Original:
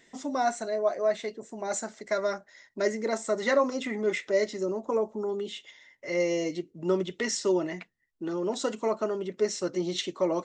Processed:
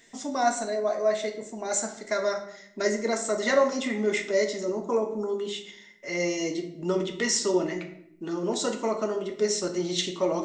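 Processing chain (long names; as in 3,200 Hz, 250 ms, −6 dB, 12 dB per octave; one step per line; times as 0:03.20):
high-shelf EQ 4,400 Hz +8 dB
notch filter 510 Hz, Q 12
on a send: convolution reverb RT60 0.75 s, pre-delay 4 ms, DRR 4 dB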